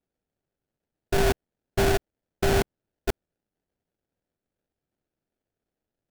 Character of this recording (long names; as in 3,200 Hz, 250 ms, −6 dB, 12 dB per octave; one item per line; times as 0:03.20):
aliases and images of a low sample rate 1,100 Hz, jitter 20%